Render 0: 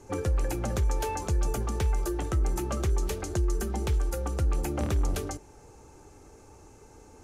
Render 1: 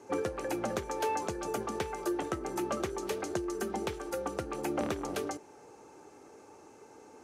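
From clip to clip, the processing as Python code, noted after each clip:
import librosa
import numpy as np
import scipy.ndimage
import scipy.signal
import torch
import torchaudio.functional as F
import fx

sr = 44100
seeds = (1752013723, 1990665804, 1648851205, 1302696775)

y = scipy.signal.sosfilt(scipy.signal.butter(2, 260.0, 'highpass', fs=sr, output='sos'), x)
y = fx.high_shelf(y, sr, hz=4900.0, db=-8.0)
y = fx.notch(y, sr, hz=7100.0, q=21.0)
y = y * 10.0 ** (1.5 / 20.0)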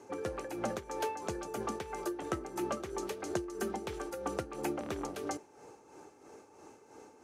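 y = fx.rider(x, sr, range_db=10, speed_s=0.5)
y = y * (1.0 - 0.61 / 2.0 + 0.61 / 2.0 * np.cos(2.0 * np.pi * 3.0 * (np.arange(len(y)) / sr)))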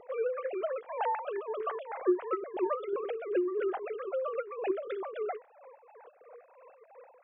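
y = fx.sine_speech(x, sr)
y = y * 10.0 ** (4.5 / 20.0)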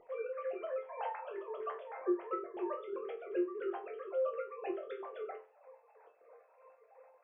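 y = fx.resonator_bank(x, sr, root=41, chord='sus4', decay_s=0.3)
y = y * 10.0 ** (5.5 / 20.0)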